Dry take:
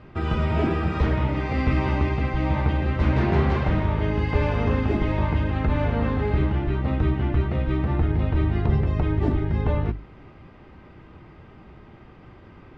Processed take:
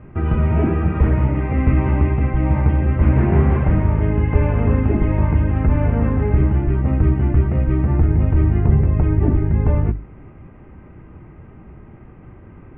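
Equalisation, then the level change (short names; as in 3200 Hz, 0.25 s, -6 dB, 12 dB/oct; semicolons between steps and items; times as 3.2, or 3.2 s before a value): steep low-pass 2600 Hz 36 dB/oct; low shelf 400 Hz +8.5 dB; -1.0 dB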